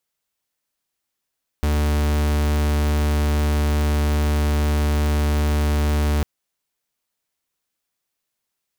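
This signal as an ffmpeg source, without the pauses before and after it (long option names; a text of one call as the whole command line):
ffmpeg -f lavfi -i "aevalsrc='0.112*(2*lt(mod(74.4*t,1),0.44)-1)':duration=4.6:sample_rate=44100" out.wav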